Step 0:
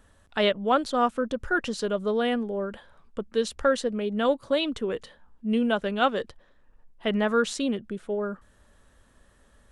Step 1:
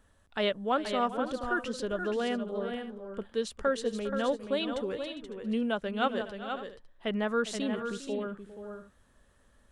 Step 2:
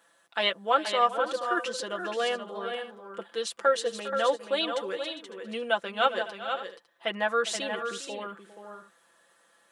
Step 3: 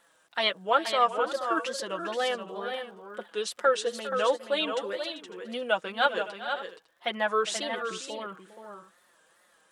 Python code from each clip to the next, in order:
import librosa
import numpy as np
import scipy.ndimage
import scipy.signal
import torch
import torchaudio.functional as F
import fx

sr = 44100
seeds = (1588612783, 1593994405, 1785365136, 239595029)

y1 = fx.echo_multitap(x, sr, ms=(404, 478, 554), db=(-15.0, -7.5, -17.0))
y1 = y1 * librosa.db_to_amplitude(-6.0)
y2 = scipy.signal.sosfilt(scipy.signal.bessel(2, 610.0, 'highpass', norm='mag', fs=sr, output='sos'), y1)
y2 = y2 + 0.76 * np.pad(y2, (int(5.9 * sr / 1000.0), 0))[:len(y2)]
y2 = y2 * librosa.db_to_amplitude(5.0)
y3 = fx.dmg_crackle(y2, sr, seeds[0], per_s=120.0, level_db=-56.0)
y3 = fx.wow_flutter(y3, sr, seeds[1], rate_hz=2.1, depth_cents=120.0)